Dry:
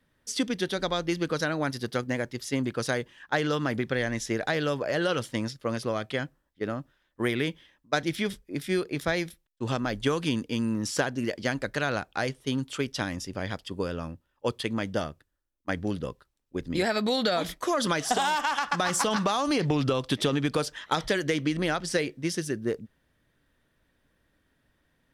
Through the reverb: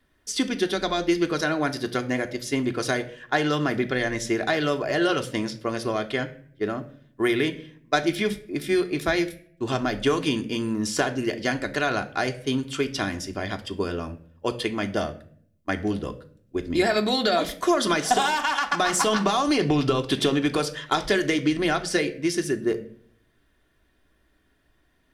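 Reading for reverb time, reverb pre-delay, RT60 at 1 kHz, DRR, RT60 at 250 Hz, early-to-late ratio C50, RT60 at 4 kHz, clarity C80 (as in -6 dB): 0.50 s, 3 ms, 0.45 s, 4.0 dB, 0.80 s, 15.5 dB, 0.40 s, 19.0 dB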